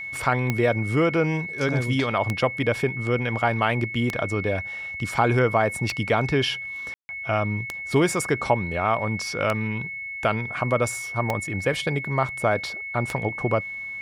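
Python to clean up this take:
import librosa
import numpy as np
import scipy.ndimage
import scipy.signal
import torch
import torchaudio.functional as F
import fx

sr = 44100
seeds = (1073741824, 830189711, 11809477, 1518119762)

y = fx.fix_declick_ar(x, sr, threshold=10.0)
y = fx.notch(y, sr, hz=2200.0, q=30.0)
y = fx.fix_ambience(y, sr, seeds[0], print_start_s=9.75, print_end_s=10.25, start_s=6.94, end_s=7.09)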